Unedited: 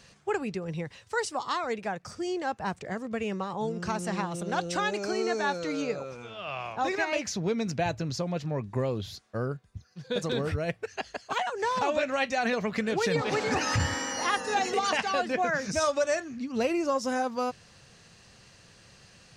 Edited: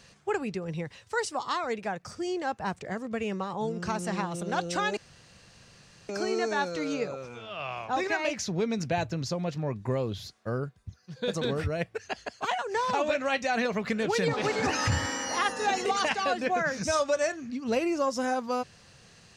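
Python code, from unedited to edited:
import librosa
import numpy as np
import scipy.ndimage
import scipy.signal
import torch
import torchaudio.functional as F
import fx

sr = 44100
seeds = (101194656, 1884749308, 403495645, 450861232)

y = fx.edit(x, sr, fx.insert_room_tone(at_s=4.97, length_s=1.12), tone=tone)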